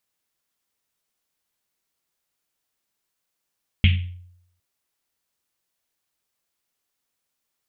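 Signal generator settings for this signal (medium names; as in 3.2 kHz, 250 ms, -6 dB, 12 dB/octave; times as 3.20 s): Risset drum length 0.76 s, pitch 89 Hz, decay 0.75 s, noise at 2.7 kHz, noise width 1.3 kHz, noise 20%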